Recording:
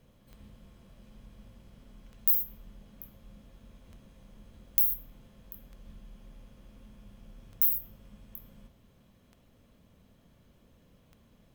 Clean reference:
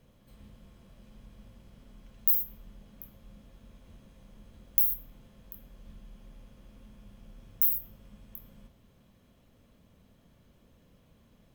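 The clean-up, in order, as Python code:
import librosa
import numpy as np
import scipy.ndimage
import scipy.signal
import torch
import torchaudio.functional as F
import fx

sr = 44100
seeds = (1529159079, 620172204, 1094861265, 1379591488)

y = fx.fix_declip(x, sr, threshold_db=-10.5)
y = fx.fix_declick_ar(y, sr, threshold=10.0)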